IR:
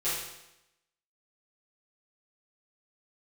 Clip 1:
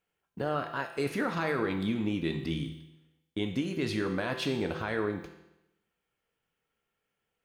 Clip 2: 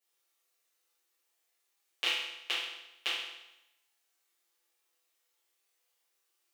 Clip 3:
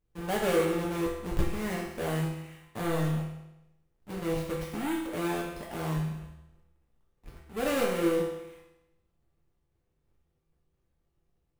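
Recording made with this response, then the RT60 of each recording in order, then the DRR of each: 2; 0.90, 0.90, 0.90 s; 4.0, -13.0, -4.5 dB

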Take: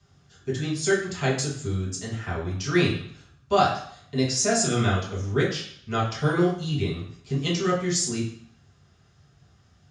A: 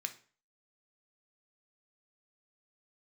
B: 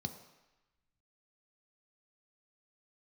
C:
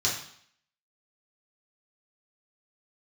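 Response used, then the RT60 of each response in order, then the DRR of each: C; 0.40, 1.0, 0.60 s; 6.5, 6.5, -6.0 dB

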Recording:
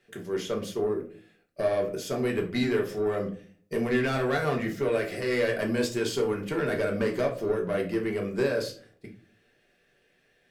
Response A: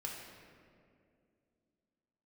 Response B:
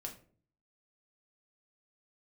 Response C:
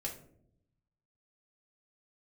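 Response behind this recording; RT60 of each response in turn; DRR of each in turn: B; 2.3, 0.45, 0.70 s; -2.5, 0.5, -2.5 dB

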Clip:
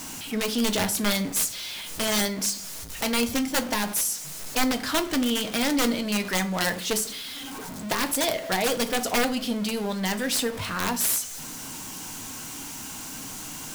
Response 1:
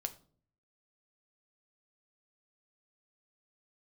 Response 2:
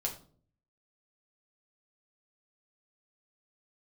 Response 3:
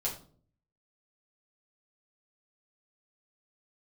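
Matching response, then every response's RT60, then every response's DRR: 1; 0.50, 0.50, 0.50 s; 7.0, -1.0, -5.5 dB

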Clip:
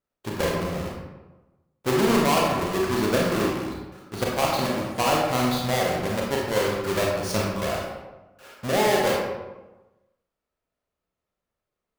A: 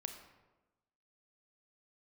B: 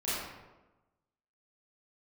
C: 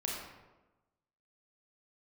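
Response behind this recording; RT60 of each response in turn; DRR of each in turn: C; 1.1, 1.1, 1.1 s; 5.5, -12.0, -3.0 dB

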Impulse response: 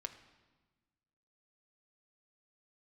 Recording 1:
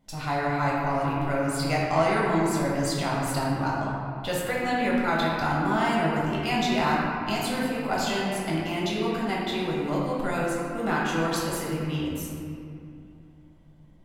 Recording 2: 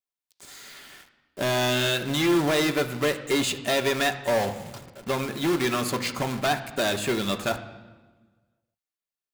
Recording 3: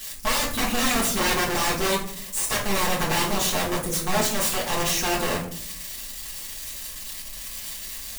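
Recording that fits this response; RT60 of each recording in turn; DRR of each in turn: 2; 2.6, 1.3, 0.60 s; -6.0, 5.0, -5.5 dB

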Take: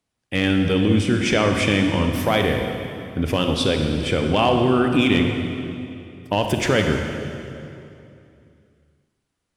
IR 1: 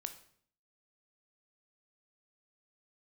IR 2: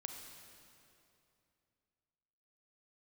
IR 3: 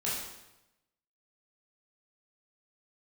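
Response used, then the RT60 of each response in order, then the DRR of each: 2; 0.60, 2.7, 0.95 s; 7.5, 3.5, -8.0 dB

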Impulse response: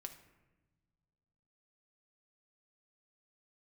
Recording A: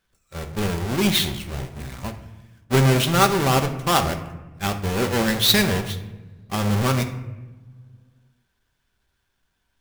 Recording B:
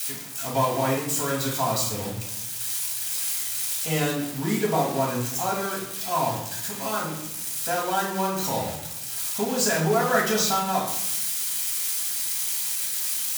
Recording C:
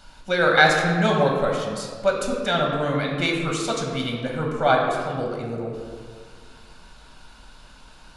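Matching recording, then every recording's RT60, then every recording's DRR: A; not exponential, 0.80 s, 1.8 s; 5.5, -4.5, -0.5 dB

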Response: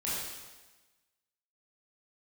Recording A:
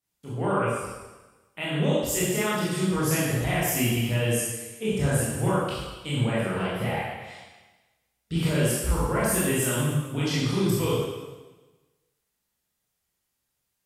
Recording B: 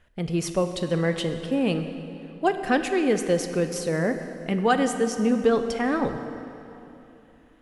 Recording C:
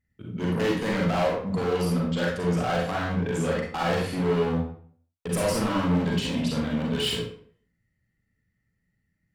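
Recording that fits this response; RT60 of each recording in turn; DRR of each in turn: A; 1.2, 3.0, 0.55 s; -9.0, 7.0, -3.5 dB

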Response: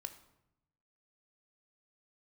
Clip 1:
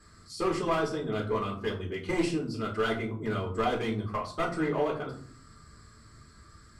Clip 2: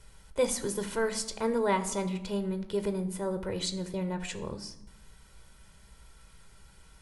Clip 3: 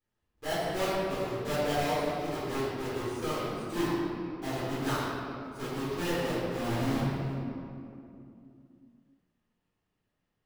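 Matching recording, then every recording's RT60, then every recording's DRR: 2; 0.55, 0.85, 2.6 s; -4.0, 8.5, -11.5 dB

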